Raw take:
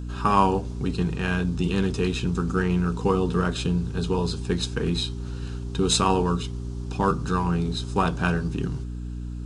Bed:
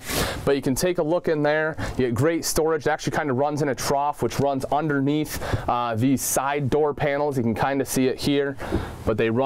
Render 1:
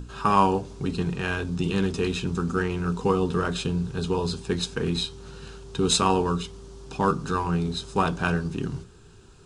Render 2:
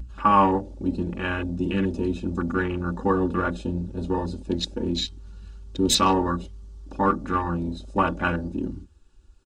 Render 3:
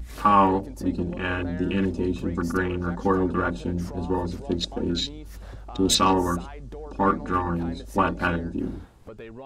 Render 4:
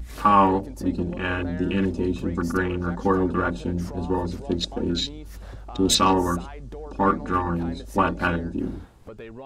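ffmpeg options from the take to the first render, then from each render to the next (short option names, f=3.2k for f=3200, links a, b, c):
-af "bandreject=f=60:t=h:w=6,bandreject=f=120:t=h:w=6,bandreject=f=180:t=h:w=6,bandreject=f=240:t=h:w=6,bandreject=f=300:t=h:w=6"
-af "afwtdn=0.0251,aecho=1:1:3.5:0.9"
-filter_complex "[1:a]volume=-19.5dB[a];[0:a][a]amix=inputs=2:normalize=0"
-af "volume=1dB"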